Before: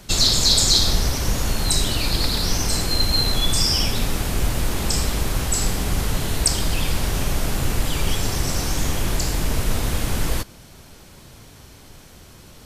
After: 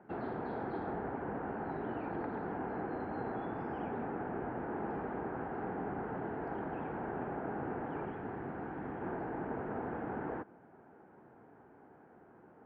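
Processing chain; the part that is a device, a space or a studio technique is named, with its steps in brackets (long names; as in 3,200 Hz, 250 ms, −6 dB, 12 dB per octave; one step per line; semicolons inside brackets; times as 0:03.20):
low-pass filter 1,200 Hz 12 dB per octave
low-pass filter 1,200 Hz 12 dB per octave
0:08.05–0:09.02: parametric band 650 Hz −4.5 dB 2.2 octaves
phone earpiece (loudspeaker in its box 330–3,900 Hz, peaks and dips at 570 Hz −8 dB, 800 Hz +3 dB, 1,100 Hz −6 dB, 1,600 Hz +6 dB, 3,700 Hz −7 dB)
level −3.5 dB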